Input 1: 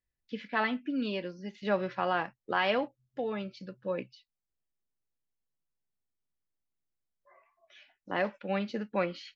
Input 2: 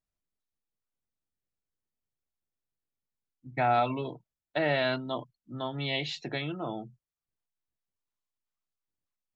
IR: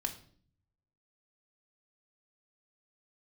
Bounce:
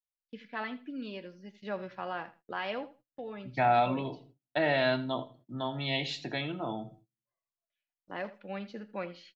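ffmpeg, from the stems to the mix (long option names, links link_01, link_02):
-filter_complex "[0:a]volume=-8dB,asplit=3[link_01][link_02][link_03];[link_02]volume=-23dB[link_04];[link_03]volume=-16dB[link_05];[1:a]volume=-4dB,asplit=3[link_06][link_07][link_08];[link_07]volume=-4.5dB[link_09];[link_08]volume=-14dB[link_10];[2:a]atrim=start_sample=2205[link_11];[link_04][link_09]amix=inputs=2:normalize=0[link_12];[link_12][link_11]afir=irnorm=-1:irlink=0[link_13];[link_05][link_10]amix=inputs=2:normalize=0,aecho=0:1:81|162|243:1|0.17|0.0289[link_14];[link_01][link_06][link_13][link_14]amix=inputs=4:normalize=0,agate=range=-27dB:threshold=-57dB:ratio=16:detection=peak"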